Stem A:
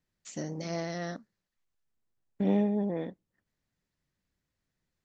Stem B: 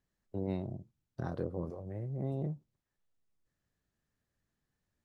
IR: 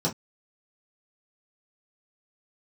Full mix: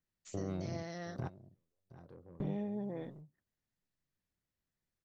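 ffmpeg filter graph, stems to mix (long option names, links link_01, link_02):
-filter_complex "[0:a]volume=-8dB,asplit=2[link_01][link_02];[1:a]asoftclip=type=tanh:threshold=-30.5dB,volume=2.5dB,asplit=2[link_03][link_04];[link_04]volume=-18.5dB[link_05];[link_02]apad=whole_len=222498[link_06];[link_03][link_06]sidechaingate=range=-49dB:threshold=-59dB:ratio=16:detection=peak[link_07];[link_05]aecho=0:1:719:1[link_08];[link_01][link_07][link_08]amix=inputs=3:normalize=0,acompressor=threshold=-36dB:ratio=2.5"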